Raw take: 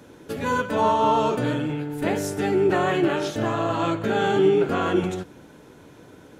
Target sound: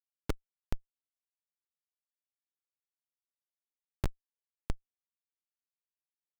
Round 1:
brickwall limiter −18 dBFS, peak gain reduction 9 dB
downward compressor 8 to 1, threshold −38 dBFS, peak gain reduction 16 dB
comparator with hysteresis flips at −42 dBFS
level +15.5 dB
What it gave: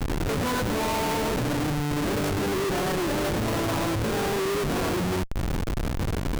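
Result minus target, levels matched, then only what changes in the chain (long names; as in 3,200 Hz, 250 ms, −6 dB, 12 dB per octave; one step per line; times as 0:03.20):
comparator with hysteresis: distortion −36 dB
change: comparator with hysteresis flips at −31 dBFS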